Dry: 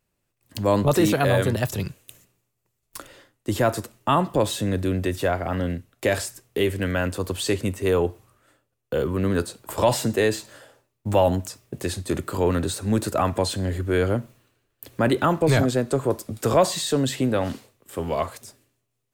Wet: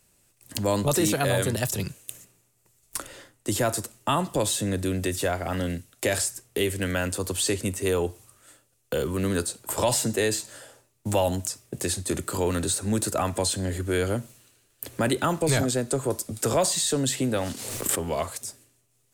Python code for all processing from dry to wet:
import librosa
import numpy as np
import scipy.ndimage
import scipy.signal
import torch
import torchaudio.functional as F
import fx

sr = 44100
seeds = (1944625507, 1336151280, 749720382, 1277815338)

y = fx.chain(x, sr, fx.law_mismatch(coded='A'),
    fx.pre_swell(db_per_s=41.0), at=(17.37, 18.01))
y = fx.peak_eq(y, sr, hz=8700.0, db=12.0, octaves=1.7)
y = fx.notch(y, sr, hz=1100.0, q=22.0)
y = fx.band_squash(y, sr, depth_pct=40)
y = y * librosa.db_to_amplitude(-4.0)